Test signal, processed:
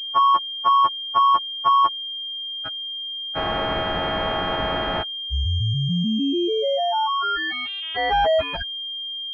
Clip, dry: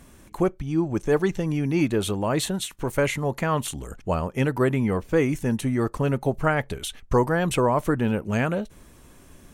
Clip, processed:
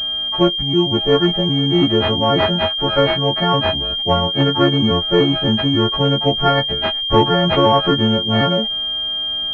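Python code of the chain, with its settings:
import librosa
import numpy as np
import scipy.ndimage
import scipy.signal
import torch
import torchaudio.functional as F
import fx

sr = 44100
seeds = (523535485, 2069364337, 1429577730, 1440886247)

y = fx.freq_snap(x, sr, grid_st=4)
y = fx.pwm(y, sr, carrier_hz=3200.0)
y = y * 10.0 ** (7.0 / 20.0)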